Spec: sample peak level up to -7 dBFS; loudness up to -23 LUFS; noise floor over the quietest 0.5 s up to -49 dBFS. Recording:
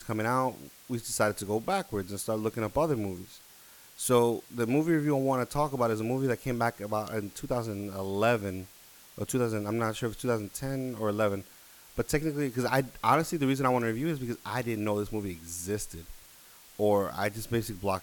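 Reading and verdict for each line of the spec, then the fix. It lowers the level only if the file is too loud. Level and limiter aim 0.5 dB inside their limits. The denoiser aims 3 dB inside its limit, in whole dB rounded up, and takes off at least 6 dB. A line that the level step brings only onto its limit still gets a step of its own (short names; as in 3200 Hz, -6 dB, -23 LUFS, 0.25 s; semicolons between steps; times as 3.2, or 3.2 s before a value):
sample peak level -10.0 dBFS: OK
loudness -30.5 LUFS: OK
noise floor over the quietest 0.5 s -54 dBFS: OK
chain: none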